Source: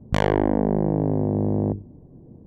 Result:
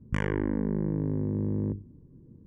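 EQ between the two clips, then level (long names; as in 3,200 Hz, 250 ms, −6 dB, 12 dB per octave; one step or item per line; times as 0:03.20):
high-frequency loss of the air 60 metres
high-shelf EQ 5,400 Hz +6 dB
phaser with its sweep stopped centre 1,700 Hz, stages 4
−5.0 dB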